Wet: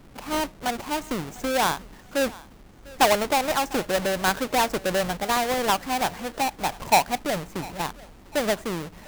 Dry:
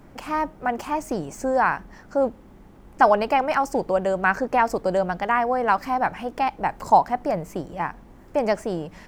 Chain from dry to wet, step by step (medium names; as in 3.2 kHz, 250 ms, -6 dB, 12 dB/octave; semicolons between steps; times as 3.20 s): square wave that keeps the level; thinning echo 699 ms, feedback 36%, level -20 dB; trim -6 dB